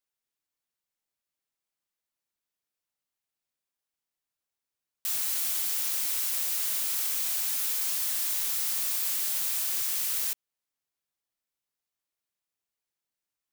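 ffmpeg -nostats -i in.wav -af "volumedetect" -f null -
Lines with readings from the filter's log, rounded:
mean_volume: -33.2 dB
max_volume: -15.7 dB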